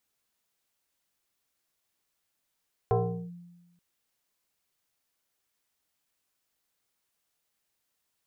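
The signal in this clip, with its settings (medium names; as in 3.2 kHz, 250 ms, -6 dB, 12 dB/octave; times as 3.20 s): FM tone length 0.88 s, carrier 174 Hz, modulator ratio 1.66, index 2.3, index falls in 0.40 s linear, decay 1.16 s, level -19.5 dB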